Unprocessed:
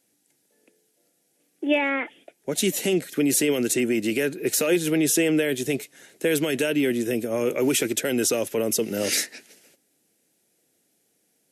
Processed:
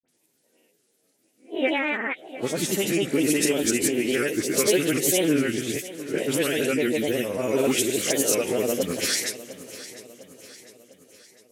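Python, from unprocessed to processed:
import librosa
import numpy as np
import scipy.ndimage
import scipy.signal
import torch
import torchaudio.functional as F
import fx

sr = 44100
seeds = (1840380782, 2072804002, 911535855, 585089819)

p1 = fx.spec_swells(x, sr, rise_s=0.44)
p2 = fx.granulator(p1, sr, seeds[0], grain_ms=100.0, per_s=20.0, spray_ms=100.0, spread_st=3)
p3 = fx.dispersion(p2, sr, late='highs', ms=53.0, hz=2500.0)
y = p3 + fx.echo_feedback(p3, sr, ms=703, feedback_pct=50, wet_db=-16, dry=0)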